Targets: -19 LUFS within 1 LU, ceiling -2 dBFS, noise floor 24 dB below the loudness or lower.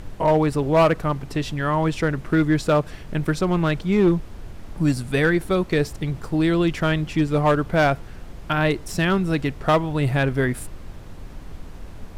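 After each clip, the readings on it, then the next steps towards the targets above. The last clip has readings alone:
clipped 0.8%; flat tops at -11.0 dBFS; noise floor -39 dBFS; noise floor target -46 dBFS; loudness -21.5 LUFS; peak -11.0 dBFS; loudness target -19.0 LUFS
-> clip repair -11 dBFS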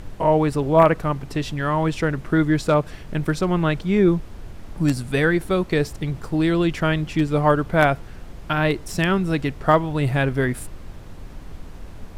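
clipped 0.0%; noise floor -39 dBFS; noise floor target -45 dBFS
-> noise print and reduce 6 dB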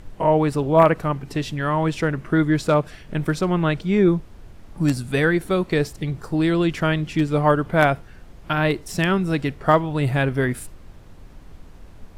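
noise floor -44 dBFS; noise floor target -45 dBFS
-> noise print and reduce 6 dB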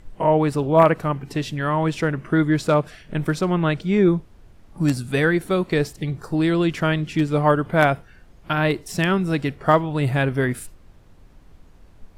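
noise floor -50 dBFS; loudness -21.0 LUFS; peak -2.5 dBFS; loudness target -19.0 LUFS
-> gain +2 dB; limiter -2 dBFS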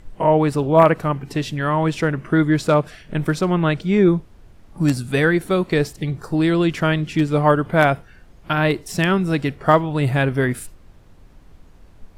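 loudness -19.0 LUFS; peak -2.0 dBFS; noise floor -48 dBFS

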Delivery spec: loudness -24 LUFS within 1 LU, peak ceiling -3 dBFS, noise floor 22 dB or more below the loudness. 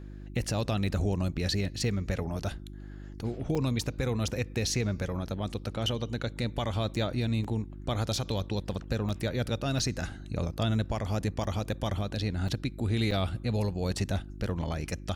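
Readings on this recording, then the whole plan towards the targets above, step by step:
dropouts 8; longest dropout 5.2 ms; hum 50 Hz; harmonics up to 350 Hz; hum level -41 dBFS; loudness -31.5 LUFS; peak -18.5 dBFS; loudness target -24.0 LUFS
-> interpolate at 3.55/4.28/7.44/9.09/9.79/11.44/12.48/13.11, 5.2 ms; de-hum 50 Hz, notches 7; gain +7.5 dB

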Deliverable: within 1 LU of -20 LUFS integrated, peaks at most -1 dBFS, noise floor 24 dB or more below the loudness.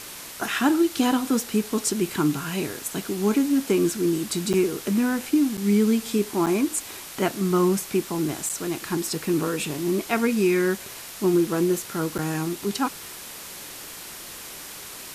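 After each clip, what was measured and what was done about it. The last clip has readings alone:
dropouts 5; longest dropout 7.3 ms; noise floor -39 dBFS; noise floor target -48 dBFS; loudness -24.0 LUFS; peak -9.0 dBFS; loudness target -20.0 LUFS
-> interpolate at 4.53/5.57/6.46/8.49/12.18, 7.3 ms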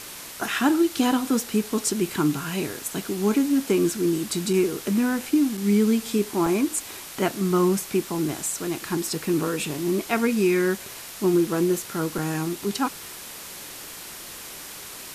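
dropouts 0; noise floor -39 dBFS; noise floor target -48 dBFS
-> denoiser 9 dB, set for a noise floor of -39 dBFS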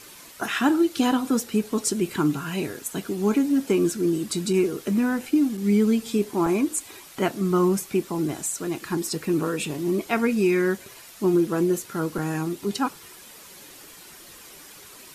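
noise floor -46 dBFS; noise floor target -49 dBFS
-> denoiser 6 dB, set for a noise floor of -46 dBFS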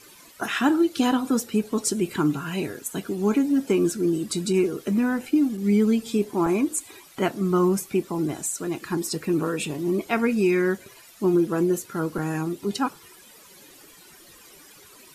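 noise floor -50 dBFS; loudness -24.5 LUFS; peak -9.5 dBFS; loudness target -20.0 LUFS
-> gain +4.5 dB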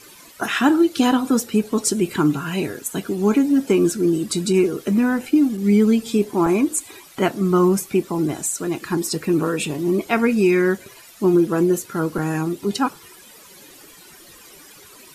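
loudness -20.0 LUFS; peak -5.0 dBFS; noise floor -46 dBFS

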